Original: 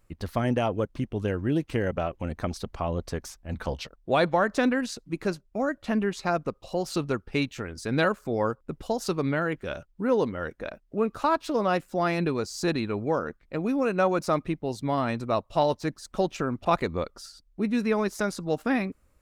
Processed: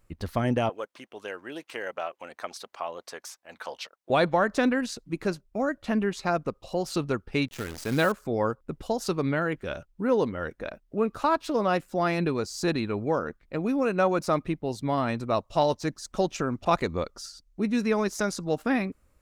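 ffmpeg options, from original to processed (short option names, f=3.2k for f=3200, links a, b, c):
-filter_complex "[0:a]asettb=1/sr,asplit=3[a][b][c];[a]atrim=end=0.694[d];[b]atrim=start=0.69:end=4.1,asetpts=PTS-STARTPTS,afade=t=in:d=0.004:c=qsin,afade=t=out:st=3.406:d=0.004:c=qsin,highpass=700[e];[c]atrim=start=4.096[f];[d][e]acrossfade=d=0.004:c1=hsin:c2=qsin[g];[g][f]acrossfade=d=0.004:c1=qsin:c2=hsin,asettb=1/sr,asplit=3[h][i][j];[h]atrim=end=7.484[k];[i]atrim=start=7.48:end=8.12,asetpts=PTS-STARTPTS,afade=t=in:d=0.004:c=qsin,afade=t=out:st=0.636:d=0.004:c=qsin,acrusher=bits=7:dc=4:mix=0:aa=0.000001[l];[j]atrim=start=8.116[m];[k][l]acrossfade=d=0.004:c1=hsin:c2=qsin[n];[n][m]acrossfade=d=0.004:c1=qsin:c2=hsin,asettb=1/sr,asplit=3[o][p][q];[o]atrim=end=15.344[r];[p]atrim=start=15.34:end=18.49,asetpts=PTS-STARTPTS,afade=t=in:d=0.004:c=qsin,afade=t=out:st=3.146:d=0.004:c=qsin,equalizer=f=6.2k:t=o:w=0.77:g=5.5[s];[q]atrim=start=18.486[t];[r][s]acrossfade=d=0.004:c1=hsin:c2=qsin[u];[u][t]acrossfade=d=0.004:c1=qsin:c2=hsin"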